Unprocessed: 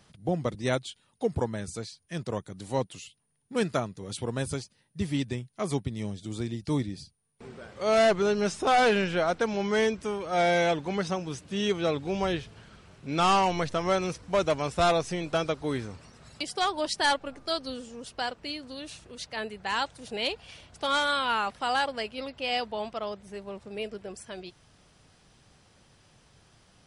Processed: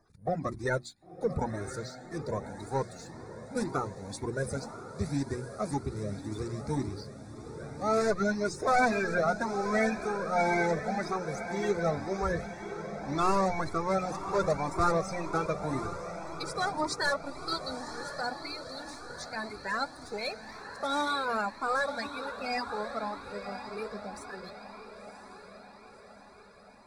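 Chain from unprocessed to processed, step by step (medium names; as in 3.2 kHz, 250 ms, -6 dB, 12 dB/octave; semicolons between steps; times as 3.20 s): coarse spectral quantiser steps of 30 dB; hum notches 60/120/180/240/300/360 Hz; waveshaping leveller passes 1; Butterworth band-stop 3 kHz, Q 2; treble shelf 6.4 kHz -5 dB; echo that smears into a reverb 1020 ms, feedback 56%, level -10 dB; Shepard-style flanger rising 1.9 Hz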